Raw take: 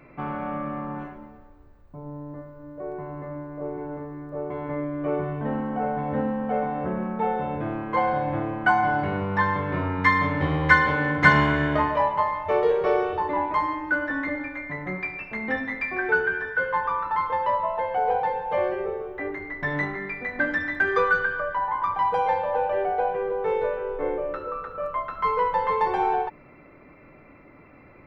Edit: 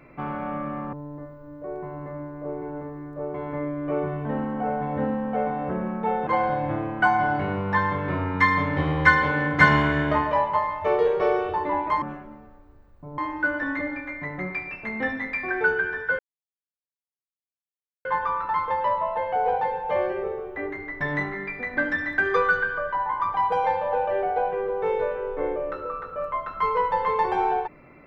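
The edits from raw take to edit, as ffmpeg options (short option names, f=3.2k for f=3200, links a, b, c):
-filter_complex "[0:a]asplit=6[a][b][c][d][e][f];[a]atrim=end=0.932[g];[b]atrim=start=2.088:end=7.432[h];[c]atrim=start=7.908:end=13.662[i];[d]atrim=start=0.928:end=2.092[j];[e]atrim=start=13.658:end=16.67,asetpts=PTS-STARTPTS,afade=t=out:st=3.008:d=0.004:c=hsin,apad=pad_dur=1.86[k];[f]atrim=start=16.67,asetpts=PTS-STARTPTS,afade=t=in:d=0.004:c=hsin[l];[g][h]acrossfade=d=0.004:c1=hsin:c2=hsin[m];[m][i]acrossfade=d=0.004:c1=hsin:c2=hsin[n];[n][j]acrossfade=d=0.004:c1=hsin:c2=hsin[o];[k][l]concat=n=2:v=0:a=1[p];[o][p]acrossfade=d=0.004:c1=hsin:c2=hsin"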